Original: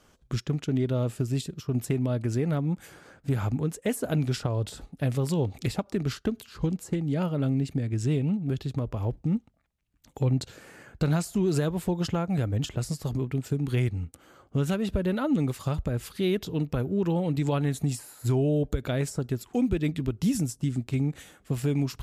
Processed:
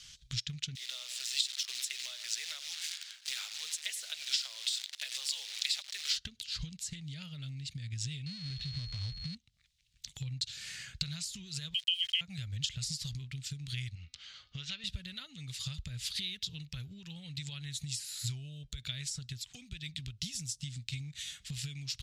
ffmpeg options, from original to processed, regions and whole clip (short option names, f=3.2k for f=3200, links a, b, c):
-filter_complex "[0:a]asettb=1/sr,asplit=3[a][b][c];[a]atrim=end=0.754[d];[b]atrim=start=0.75:end=6.17,asetpts=PTS-STARTPTS,afade=t=in:d=0.004:c=qsin,afade=t=out:st=5.416:d=0.004:c=qsin,asplit=2[e][f];[f]adelay=96,lowpass=f=1.8k:p=1,volume=-12dB,asplit=2[g][h];[h]adelay=96,lowpass=f=1.8k:p=1,volume=0.37,asplit=2[i][j];[j]adelay=96,lowpass=f=1.8k:p=1,volume=0.37,asplit=2[k][l];[l]adelay=96,lowpass=f=1.8k:p=1,volume=0.37[m];[e][g][i][k][m]amix=inputs=5:normalize=0,atrim=end_sample=239022,acrusher=bits=8:dc=4:mix=0:aa=0.000001,highpass=f=600:w=0.5412,highpass=f=600:w=1.3066[n];[c]atrim=start=6.166[o];[d][n]acrossfade=d=0.004:c1=hsin:c2=qsin[p];[p][o]acrossfade=d=0.004:c1=qsin:c2=hsin,asettb=1/sr,asplit=3[q][r][s];[q]atrim=end=8.264[t];[r]atrim=start=8.26:end=9.35,asetpts=PTS-STARTPTS,afade=t=in:d=0.004:c=qsin,afade=t=out:st=1.086:d=0.004:c=qsin,aeval=exprs='val(0)+0.5*0.0299*sgn(val(0))':c=same,aeval=exprs='val(0)+0.02*sin(2*PI*4300*n/s)':c=same,adynamicsmooth=sensitivity=2:basefreq=1.3k[u];[s]atrim=start=9.346[v];[t][u]acrossfade=d=0.004:c1=hsin:c2=qsin[w];[w][v]acrossfade=d=0.004:c1=qsin:c2=hsin,asettb=1/sr,asplit=3[x][y][z];[x]atrim=end=11.744[aa];[y]atrim=start=11.74:end=12.21,asetpts=PTS-STARTPTS,afade=t=in:d=0.004:c=qsin,afade=t=out:st=0.466:d=0.004:c=qsin,highpass=f=230:w=0.5412,highpass=f=230:w=1.3066,lowpass=f=2.9k:t=q:w=0.5098,lowpass=f=2.9k:t=q:w=0.6013,lowpass=f=2.9k:t=q:w=0.9,lowpass=f=2.9k:t=q:w=2.563,afreqshift=-3400,aeval=exprs='val(0)*gte(abs(val(0)),0.00668)':c=same[ab];[z]atrim=start=12.206[ac];[aa][ab]acrossfade=d=0.004:c1=hsin:c2=qsin[ad];[ad][ac]acrossfade=d=0.004:c1=qsin:c2=hsin,asettb=1/sr,asplit=3[ae][af][ag];[ae]atrim=end=13.954[ah];[af]atrim=start=13.95:end=14.84,asetpts=PTS-STARTPTS,afade=t=in:d=0.004:c=qsin,afade=t=out:st=0.886:d=0.004:c=qsin,lowpass=f=5.3k:w=0.5412,lowpass=f=5.3k:w=1.3066,equalizer=f=120:t=o:w=2.4:g=-10.5,bandreject=f=248.7:t=h:w=4,bandreject=f=497.4:t=h:w=4,bandreject=f=746.1:t=h:w=4,bandreject=f=994.8:t=h:w=4,bandreject=f=1.2435k:t=h:w=4,bandreject=f=1.4922k:t=h:w=4,bandreject=f=1.7409k:t=h:w=4,bandreject=f=1.9896k:t=h:w=4,bandreject=f=2.2383k:t=h:w=4,bandreject=f=2.487k:t=h:w=4,bandreject=f=2.7357k:t=h:w=4,bandreject=f=2.9844k:t=h:w=4,bandreject=f=3.2331k:t=h:w=4,bandreject=f=3.4818k:t=h:w=4,bandreject=f=3.7305k:t=h:w=4,bandreject=f=3.9792k:t=h:w=4,bandreject=f=4.2279k:t=h:w=4,bandreject=f=4.4766k:t=h:w=4,bandreject=f=4.7253k:t=h:w=4,bandreject=f=4.974k:t=h:w=4,bandreject=f=5.2227k:t=h:w=4,bandreject=f=5.4714k:t=h:w=4[ai];[ag]atrim=start=14.836[aj];[ah][ai]acrossfade=d=0.004:c1=hsin:c2=qsin[ak];[ak][aj]acrossfade=d=0.004:c1=qsin:c2=hsin,bass=f=250:g=-8,treble=f=4k:g=2,acompressor=threshold=-43dB:ratio=6,firequalizer=gain_entry='entry(130,0);entry(310,-30);entry(910,-24);entry(1900,-3);entry(3700,10);entry(13000,-11)':delay=0.05:min_phase=1,volume=8.5dB"